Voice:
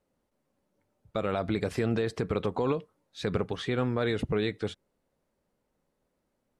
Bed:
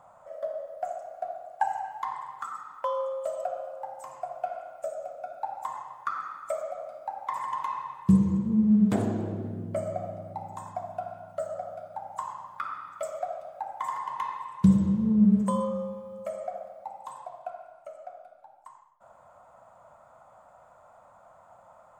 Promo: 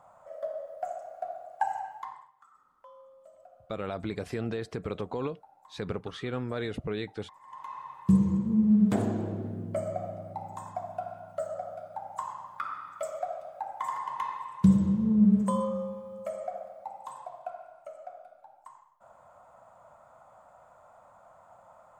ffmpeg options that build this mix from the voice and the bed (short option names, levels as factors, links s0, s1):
-filter_complex "[0:a]adelay=2550,volume=0.562[s0];[1:a]volume=10,afade=t=out:st=1.79:d=0.52:silence=0.0891251,afade=t=in:st=7.41:d=0.81:silence=0.0794328[s1];[s0][s1]amix=inputs=2:normalize=0"